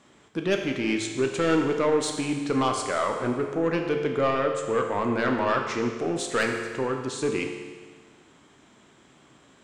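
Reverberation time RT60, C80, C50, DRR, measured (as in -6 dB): 1.5 s, 6.5 dB, 5.0 dB, 3.0 dB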